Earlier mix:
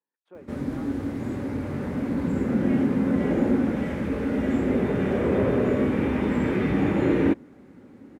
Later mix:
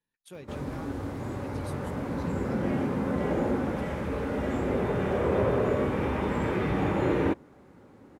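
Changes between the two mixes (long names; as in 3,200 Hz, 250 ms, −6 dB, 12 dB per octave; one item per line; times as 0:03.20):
speech: remove flat-topped band-pass 650 Hz, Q 0.6
background: add octave-band graphic EQ 250/1,000/2,000 Hz −9/+4/−4 dB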